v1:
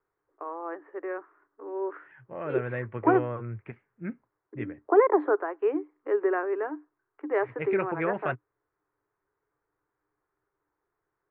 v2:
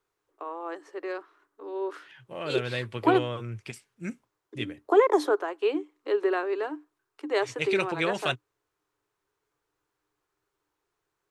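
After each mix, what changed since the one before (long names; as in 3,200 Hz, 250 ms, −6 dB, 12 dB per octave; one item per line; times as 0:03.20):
master: remove Butterworth low-pass 2,000 Hz 36 dB per octave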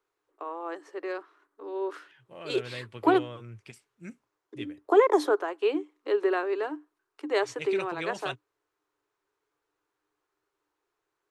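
second voice −8.0 dB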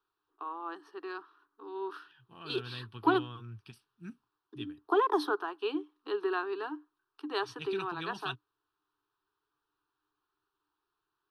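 master: add phaser with its sweep stopped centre 2,100 Hz, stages 6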